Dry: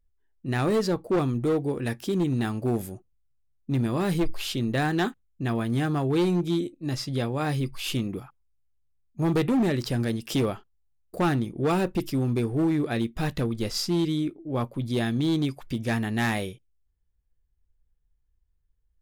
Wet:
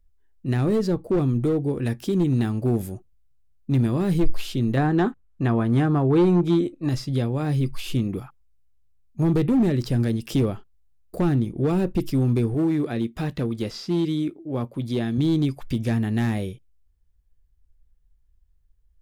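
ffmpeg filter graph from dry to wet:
-filter_complex "[0:a]asettb=1/sr,asplit=3[a][b][c];[a]atrim=end=4.774[d];[b]atrim=start=4.77:end=6.89,asetpts=PTS-STARTPTS,afade=t=in:d=0.004:c=qsin,afade=t=out:st=2.116:d=0.004:c=qsin,lowpass=12k,equalizer=f=1.1k:t=o:w=2.1:g=13[e];[c]atrim=start=6.886[f];[d][e]acrossfade=d=0.004:c1=hsin:c2=qsin[g];[g][f]acrossfade=d=0.004:c1=qsin:c2=hsin,asettb=1/sr,asplit=3[h][i][j];[h]atrim=end=12.544[k];[i]atrim=start=12.54:end=15.18,asetpts=PTS-STARTPTS,afade=t=in:d=0.004:c=qsin,afade=t=out:st=2.636:d=0.004:c=qsin,acrossover=split=4800[l][m];[m]acompressor=threshold=-48dB:ratio=4:attack=1:release=60[n];[l][n]amix=inputs=2:normalize=0,highpass=f=180:p=1[o];[j]atrim=start=15.176[p];[k][o]acrossfade=d=0.004:c1=hsin:c2=qsin[q];[q][p]acrossfade=d=0.004:c1=qsin:c2=hsin,lowshelf=f=100:g=7,acrossover=split=480[r][s];[s]acompressor=threshold=-40dB:ratio=2.5[t];[r][t]amix=inputs=2:normalize=0,volume=3dB"

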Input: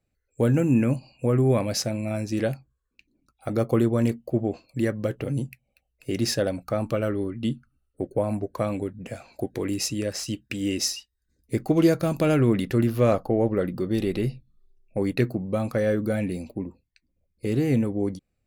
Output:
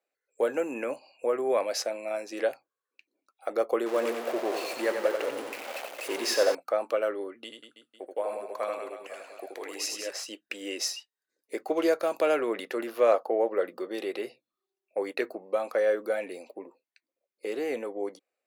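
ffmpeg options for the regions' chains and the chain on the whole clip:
-filter_complex "[0:a]asettb=1/sr,asplit=3[a][b][c];[a]atrim=end=3.864[d];[b]atrim=start=3.86:end=6.55,asetpts=PTS-STARTPTS,afade=t=in:d=0.004:c=qsin,afade=t=out:st=2.686:d=0.004:c=qsin,aeval=exprs='val(0)+0.5*0.0398*sgn(val(0))':c=same,aecho=1:1:90|180|270|360|450|540|630:0.473|0.251|0.133|0.0704|0.0373|0.0198|0.0105,atrim=end_sample=118629[e];[c]atrim=start=6.546[f];[d][e]acrossfade=d=0.004:c1=hsin:c2=qsin[g];[g][f]acrossfade=d=0.004:c1=qsin:c2=hsin,asettb=1/sr,asplit=3[h][i][j];[h]atrim=end=7.444[k];[i]atrim=start=7.44:end=10.11,asetpts=PTS-STARTPTS,afade=t=in:d=0.004:c=qsin,afade=t=out:st=2.666:d=0.004:c=qsin,equalizer=f=260:w=0.32:g=-8,aecho=1:1:80|184|319.2|495|723.4:0.631|0.398|0.251|0.158|0.1,atrim=end_sample=117747[l];[j]atrim=start=10.106[m];[k][l]acrossfade=d=0.004:c1=hsin:c2=qsin[n];[n][m]acrossfade=d=0.004:c1=qsin:c2=hsin,highpass=f=450:w=0.5412,highpass=f=450:w=1.3066,highshelf=f=3.1k:g=-8,volume=1.5dB"

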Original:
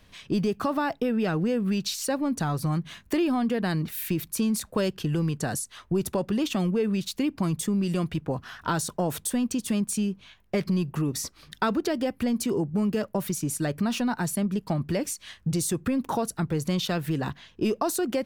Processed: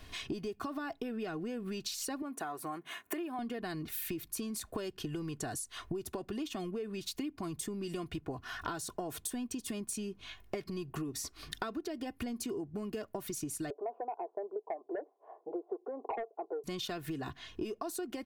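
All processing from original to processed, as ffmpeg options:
-filter_complex "[0:a]asettb=1/sr,asplit=3[a][b][c];[a]atrim=end=2.224[d];[b]atrim=start=2.22:end=3.39,asetpts=PTS-STARTPTS,afade=t=in:d=0.004:c=qsin,afade=t=out:st=1.166:d=0.004:c=qsin,highpass=420,equalizer=f=4.8k:w=1.2:g=-13.5[e];[c]atrim=start=3.386[f];[d][e]acrossfade=d=0.004:c1=hsin:c2=qsin[g];[g][f]acrossfade=d=0.004:c1=qsin:c2=hsin,asettb=1/sr,asplit=3[h][i][j];[h]atrim=end=13.704[k];[i]atrim=start=13.7:end=16.64,asetpts=PTS-STARTPTS,afade=t=in:d=0.004:c=qsin,afade=t=out:st=2.936:d=0.004:c=qsin,asuperpass=centerf=600:order=8:qfactor=1.2,aeval=exprs='0.126*sin(PI/2*1.78*val(0)/0.126)':c=same[l];[j]atrim=start=16.636[m];[k][l]acrossfade=d=0.004:c1=hsin:c2=qsin[n];[n][m]acrossfade=d=0.004:c1=qsin:c2=hsin,aecho=1:1:2.8:0.58,acompressor=threshold=-39dB:ratio=10,volume=3dB"

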